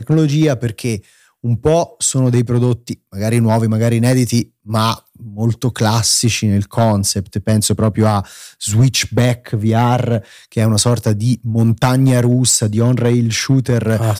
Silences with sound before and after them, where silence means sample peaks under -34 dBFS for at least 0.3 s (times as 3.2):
1–1.44